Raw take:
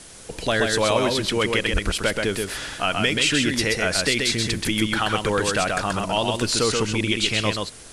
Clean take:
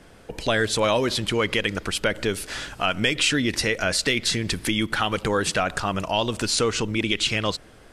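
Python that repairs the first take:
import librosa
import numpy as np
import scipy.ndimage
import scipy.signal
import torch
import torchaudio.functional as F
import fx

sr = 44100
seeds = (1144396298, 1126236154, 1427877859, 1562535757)

y = fx.fix_deplosive(x, sr, at_s=(1.72,))
y = fx.noise_reduce(y, sr, print_start_s=0.0, print_end_s=0.5, reduce_db=8.0)
y = fx.fix_echo_inverse(y, sr, delay_ms=130, level_db=-3.5)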